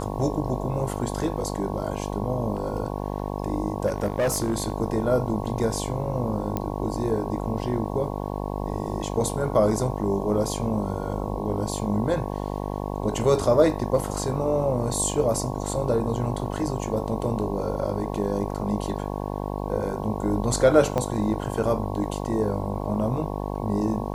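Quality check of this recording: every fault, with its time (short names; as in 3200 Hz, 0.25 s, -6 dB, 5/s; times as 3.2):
buzz 50 Hz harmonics 22 -30 dBFS
3.86–4.72 clipped -19 dBFS
6.57 pop -13 dBFS
20.98 pop -13 dBFS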